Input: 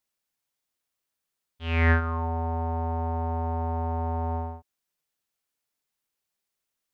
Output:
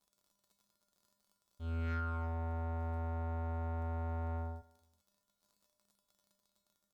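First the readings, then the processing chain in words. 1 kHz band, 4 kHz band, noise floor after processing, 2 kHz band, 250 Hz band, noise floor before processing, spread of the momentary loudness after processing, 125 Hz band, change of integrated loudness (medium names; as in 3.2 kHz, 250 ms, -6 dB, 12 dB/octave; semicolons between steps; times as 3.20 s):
-13.5 dB, -18.0 dB, -84 dBFS, -19.0 dB, -12.0 dB, -84 dBFS, 5 LU, no reading, -11.5 dB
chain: companding laws mixed up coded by mu; tilt EQ -2 dB/octave; crackle 51 per s -44 dBFS; high-order bell 2.2 kHz -9.5 dB 1.1 oct; saturation -22.5 dBFS, distortion -9 dB; feedback comb 200 Hz, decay 0.42 s, harmonics odd, mix 90%; Chebyshev shaper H 4 -26 dB, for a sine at -33 dBFS; feedback delay 201 ms, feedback 32%, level -23.5 dB; trim +6 dB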